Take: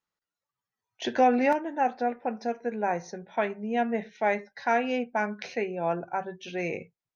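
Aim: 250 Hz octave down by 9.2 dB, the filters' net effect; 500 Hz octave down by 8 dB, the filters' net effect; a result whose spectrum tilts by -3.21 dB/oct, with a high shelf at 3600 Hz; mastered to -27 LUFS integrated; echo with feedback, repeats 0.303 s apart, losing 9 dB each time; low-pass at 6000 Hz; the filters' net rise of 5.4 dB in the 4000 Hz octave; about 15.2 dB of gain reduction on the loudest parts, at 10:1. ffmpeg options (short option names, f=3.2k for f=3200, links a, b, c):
-af "lowpass=6k,equalizer=f=250:t=o:g=-8.5,equalizer=f=500:t=o:g=-8.5,highshelf=f=3.6k:g=4,equalizer=f=4k:t=o:g=5.5,acompressor=threshold=-38dB:ratio=10,aecho=1:1:303|606|909|1212:0.355|0.124|0.0435|0.0152,volume=15.5dB"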